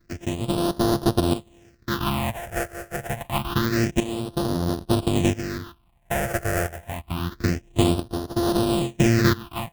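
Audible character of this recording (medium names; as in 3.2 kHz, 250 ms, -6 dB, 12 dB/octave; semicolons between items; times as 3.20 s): a buzz of ramps at a fixed pitch in blocks of 128 samples; tremolo saw up 0.75 Hz, depth 75%; aliases and images of a low sample rate 2.2 kHz, jitter 20%; phasing stages 6, 0.27 Hz, lowest notch 260–2300 Hz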